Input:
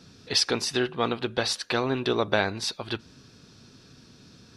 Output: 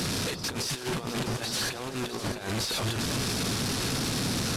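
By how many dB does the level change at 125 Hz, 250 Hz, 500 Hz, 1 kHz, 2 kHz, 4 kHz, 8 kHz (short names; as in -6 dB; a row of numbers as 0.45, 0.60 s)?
+5.5, 0.0, -6.5, -3.5, -2.5, -1.0, +4.0 dB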